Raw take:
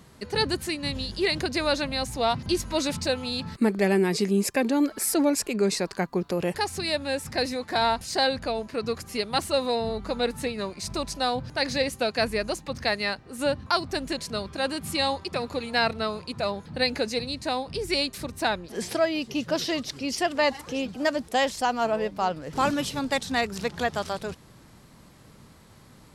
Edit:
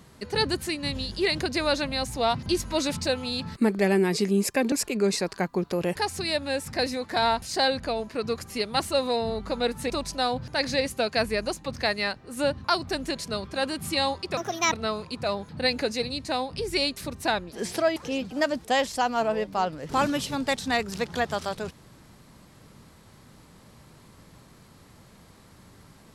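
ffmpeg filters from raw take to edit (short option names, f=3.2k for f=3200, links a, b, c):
-filter_complex "[0:a]asplit=6[a][b][c][d][e][f];[a]atrim=end=4.722[g];[b]atrim=start=5.308:end=10.492[h];[c]atrim=start=10.918:end=15.394[i];[d]atrim=start=15.39:end=15.89,asetpts=PTS-STARTPTS,asetrate=62622,aresample=44100,atrim=end_sample=15528,asetpts=PTS-STARTPTS[j];[e]atrim=start=15.886:end=19.132[k];[f]atrim=start=20.598[l];[g][h]acrossfade=d=0.004:c1=hsin:c2=hsin[m];[m][i]acrossfade=d=0.004:c1=hsin:c2=hsin[n];[n][j]acrossfade=d=0.004:c1=hsin:c2=hsin[o];[o][k]acrossfade=d=0.004:c1=hsin:c2=hsin[p];[p][l]acrossfade=d=0.004:c1=hsin:c2=hsin"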